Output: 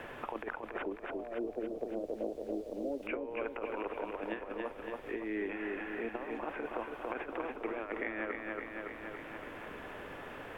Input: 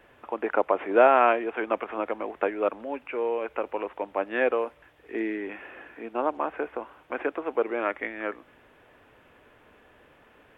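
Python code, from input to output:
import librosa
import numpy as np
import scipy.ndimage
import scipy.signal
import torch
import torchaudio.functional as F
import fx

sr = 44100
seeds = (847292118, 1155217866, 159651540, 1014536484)

y = fx.cheby1_lowpass(x, sr, hz=630.0, order=4, at=(0.82, 3.03))
y = fx.over_compress(y, sr, threshold_db=-32.0, ratio=-0.5)
y = fx.dmg_noise_colour(y, sr, seeds[0], colour='brown', level_db=-56.0)
y = fx.echo_feedback(y, sr, ms=281, feedback_pct=53, wet_db=-4.5)
y = fx.band_squash(y, sr, depth_pct=70)
y = y * librosa.db_to_amplitude(-7.0)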